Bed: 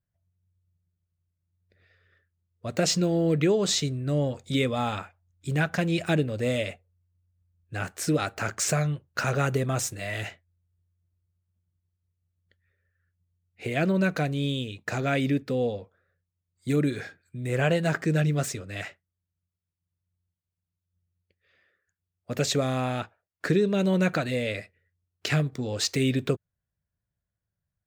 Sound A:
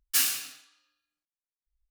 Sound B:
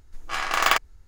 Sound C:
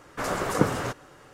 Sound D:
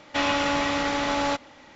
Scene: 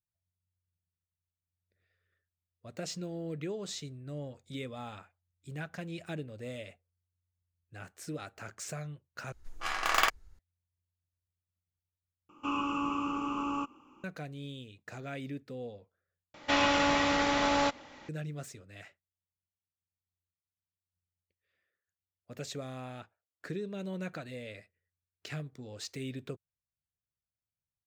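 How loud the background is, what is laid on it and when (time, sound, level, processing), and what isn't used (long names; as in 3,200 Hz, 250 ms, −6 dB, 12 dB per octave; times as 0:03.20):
bed −15 dB
0:09.32: overwrite with B −6.5 dB
0:12.29: overwrite with D −13.5 dB + drawn EQ curve 110 Hz 0 dB, 360 Hz +11 dB, 630 Hz −12 dB, 1,200 Hz +14 dB, 1,900 Hz −29 dB, 2,700 Hz +9 dB, 3,800 Hz −26 dB, 5,700 Hz −9 dB, 11,000 Hz +10 dB
0:16.34: overwrite with D −2.5 dB
not used: A, C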